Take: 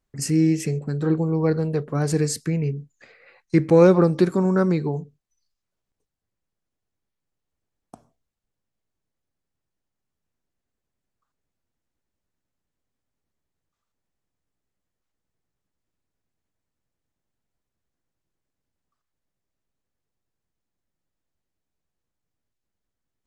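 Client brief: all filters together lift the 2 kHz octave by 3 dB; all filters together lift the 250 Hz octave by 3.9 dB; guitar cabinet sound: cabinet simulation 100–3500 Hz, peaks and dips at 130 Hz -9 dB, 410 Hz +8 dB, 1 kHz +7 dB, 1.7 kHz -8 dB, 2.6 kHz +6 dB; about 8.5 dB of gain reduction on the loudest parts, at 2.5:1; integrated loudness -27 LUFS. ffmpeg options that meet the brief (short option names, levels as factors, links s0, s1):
-af "equalizer=f=250:t=o:g=5,equalizer=f=2000:t=o:g=5.5,acompressor=threshold=0.1:ratio=2.5,highpass=100,equalizer=f=130:t=q:w=4:g=-9,equalizer=f=410:t=q:w=4:g=8,equalizer=f=1000:t=q:w=4:g=7,equalizer=f=1700:t=q:w=4:g=-8,equalizer=f=2600:t=q:w=4:g=6,lowpass=f=3500:w=0.5412,lowpass=f=3500:w=1.3066,volume=0.631"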